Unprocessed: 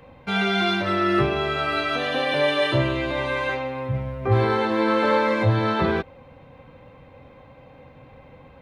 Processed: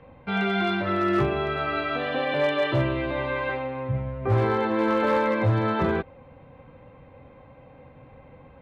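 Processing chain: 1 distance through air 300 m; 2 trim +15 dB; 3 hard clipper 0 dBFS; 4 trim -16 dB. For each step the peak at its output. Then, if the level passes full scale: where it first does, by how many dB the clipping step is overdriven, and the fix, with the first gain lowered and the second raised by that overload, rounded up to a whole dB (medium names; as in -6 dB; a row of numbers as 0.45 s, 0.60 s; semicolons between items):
-8.5 dBFS, +6.5 dBFS, 0.0 dBFS, -16.0 dBFS; step 2, 6.5 dB; step 2 +8 dB, step 4 -9 dB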